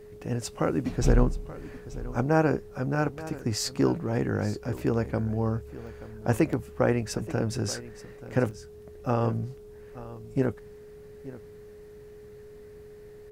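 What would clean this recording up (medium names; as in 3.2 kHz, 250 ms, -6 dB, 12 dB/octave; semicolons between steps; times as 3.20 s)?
band-stop 420 Hz, Q 30; interpolate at 3.39/4.78/5.87/6.53/8.51 s, 1.5 ms; inverse comb 880 ms -16.5 dB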